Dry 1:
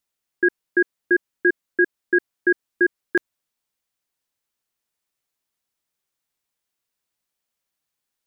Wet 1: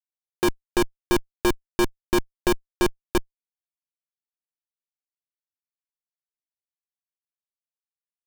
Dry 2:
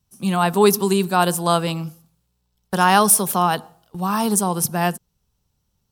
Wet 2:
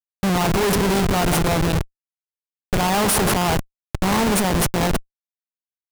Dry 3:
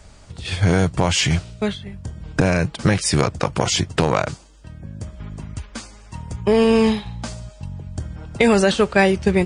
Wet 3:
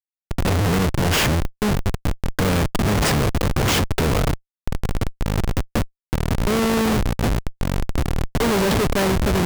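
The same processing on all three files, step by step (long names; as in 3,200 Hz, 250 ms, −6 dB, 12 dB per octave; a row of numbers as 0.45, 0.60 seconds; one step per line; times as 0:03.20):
compressor on every frequency bin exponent 0.6
comparator with hysteresis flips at −17 dBFS
normalise the peak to −12 dBFS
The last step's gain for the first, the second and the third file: +8.5, −0.5, −1.0 decibels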